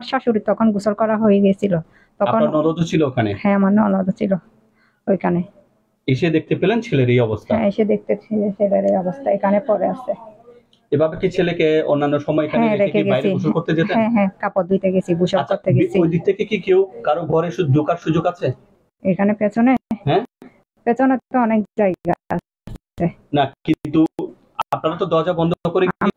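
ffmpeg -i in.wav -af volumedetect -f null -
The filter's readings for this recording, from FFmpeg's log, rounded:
mean_volume: -18.1 dB
max_volume: -5.8 dB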